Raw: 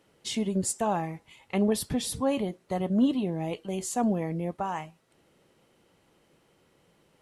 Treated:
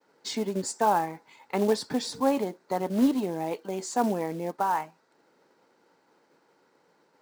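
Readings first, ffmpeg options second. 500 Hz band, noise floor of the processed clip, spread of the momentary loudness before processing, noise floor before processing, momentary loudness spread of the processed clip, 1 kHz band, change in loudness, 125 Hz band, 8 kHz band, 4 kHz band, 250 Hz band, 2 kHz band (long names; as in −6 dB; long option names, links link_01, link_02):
+2.5 dB, −67 dBFS, 8 LU, −66 dBFS, 9 LU, +5.5 dB, +1.0 dB, −5.5 dB, −3.5 dB, 0.0 dB, −1.0 dB, +3.0 dB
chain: -af "highpass=240,equalizer=frequency=270:width_type=q:width=4:gain=4,equalizer=frequency=450:width_type=q:width=4:gain=4,equalizer=frequency=900:width_type=q:width=4:gain=9,equalizer=frequency=1500:width_type=q:width=4:gain=8,equalizer=frequency=3000:width_type=q:width=4:gain=-9,equalizer=frequency=4600:width_type=q:width=4:gain=5,lowpass=frequency=7500:width=0.5412,lowpass=frequency=7500:width=1.3066,acrusher=bits=5:mode=log:mix=0:aa=0.000001,agate=range=-33dB:threshold=-60dB:ratio=3:detection=peak"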